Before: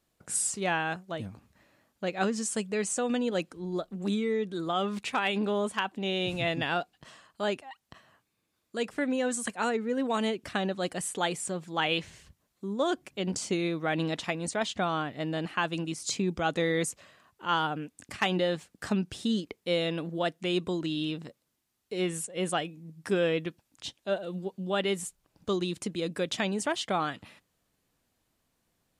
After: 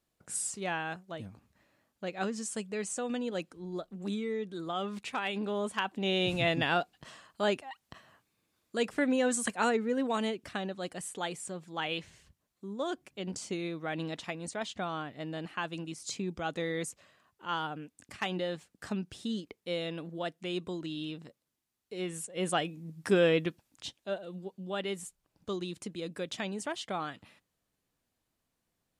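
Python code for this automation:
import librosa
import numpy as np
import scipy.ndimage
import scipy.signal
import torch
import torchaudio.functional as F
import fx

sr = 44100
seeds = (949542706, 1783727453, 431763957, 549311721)

y = fx.gain(x, sr, db=fx.line((5.44, -5.5), (6.13, 1.0), (9.7, 1.0), (10.68, -6.5), (22.06, -6.5), (22.73, 2.0), (23.47, 2.0), (24.22, -6.5)))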